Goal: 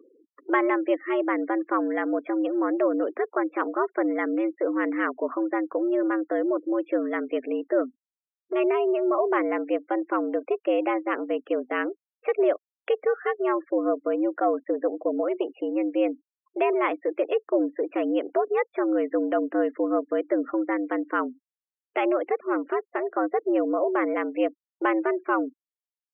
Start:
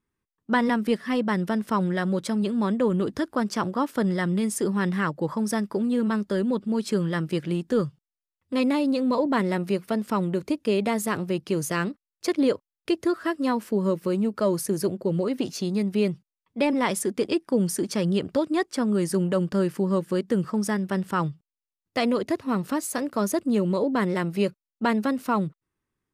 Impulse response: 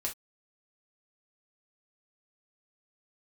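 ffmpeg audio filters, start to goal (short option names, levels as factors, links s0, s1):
-af "acompressor=mode=upward:threshold=0.0501:ratio=2.5,highpass=f=170:t=q:w=0.5412,highpass=f=170:t=q:w=1.307,lowpass=f=2600:t=q:w=0.5176,lowpass=f=2600:t=q:w=0.7071,lowpass=f=2600:t=q:w=1.932,afreqshift=110,afftfilt=real='re*gte(hypot(re,im),0.00891)':imag='im*gte(hypot(re,im),0.00891)':win_size=1024:overlap=0.75"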